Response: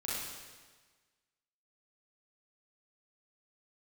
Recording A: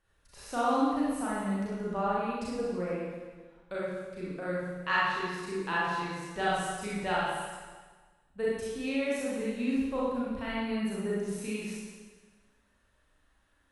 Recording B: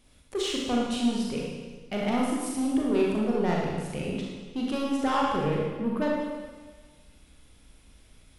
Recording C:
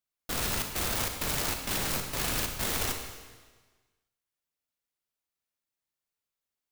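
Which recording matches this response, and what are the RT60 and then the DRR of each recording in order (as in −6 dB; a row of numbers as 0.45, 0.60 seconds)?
A; 1.4, 1.4, 1.4 seconds; −8.0, −3.5, 4.0 decibels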